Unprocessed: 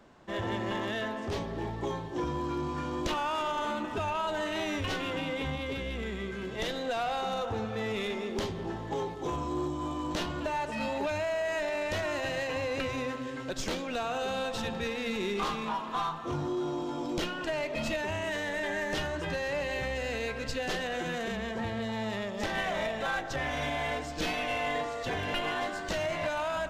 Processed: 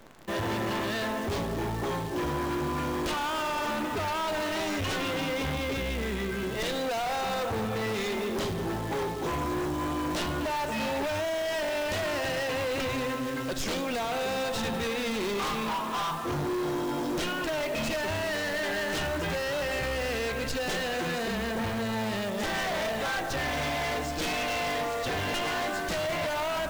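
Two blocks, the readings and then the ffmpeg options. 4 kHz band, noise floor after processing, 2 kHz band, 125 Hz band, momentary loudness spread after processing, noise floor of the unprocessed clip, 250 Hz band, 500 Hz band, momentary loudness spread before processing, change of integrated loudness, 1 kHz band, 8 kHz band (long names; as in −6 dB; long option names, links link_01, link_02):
+4.0 dB, −33 dBFS, +2.5 dB, +3.0 dB, 2 LU, −38 dBFS, +3.0 dB, +2.5 dB, 4 LU, +3.0 dB, +2.5 dB, +6.5 dB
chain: -af "asoftclip=type=tanh:threshold=-23.5dB,aeval=exprs='0.0631*(cos(1*acos(clip(val(0)/0.0631,-1,1)))-cos(1*PI/2))+0.0178*(cos(5*acos(clip(val(0)/0.0631,-1,1)))-cos(5*PI/2))':channel_layout=same,acrusher=bits=8:dc=4:mix=0:aa=0.000001"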